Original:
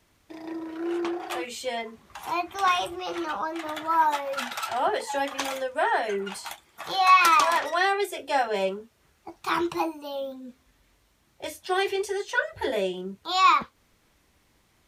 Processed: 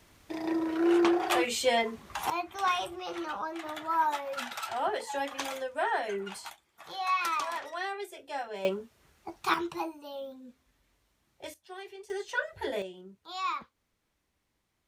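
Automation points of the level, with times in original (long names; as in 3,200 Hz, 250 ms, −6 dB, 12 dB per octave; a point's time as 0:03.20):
+5 dB
from 0:02.30 −5.5 dB
from 0:06.50 −12 dB
from 0:08.65 0 dB
from 0:09.54 −7.5 dB
from 0:11.54 −19 dB
from 0:12.10 −6 dB
from 0:12.82 −14 dB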